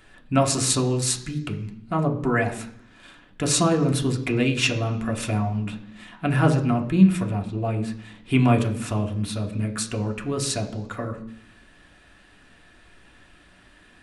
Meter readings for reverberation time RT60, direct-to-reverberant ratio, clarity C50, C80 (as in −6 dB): 0.70 s, 2.5 dB, 12.0 dB, 14.5 dB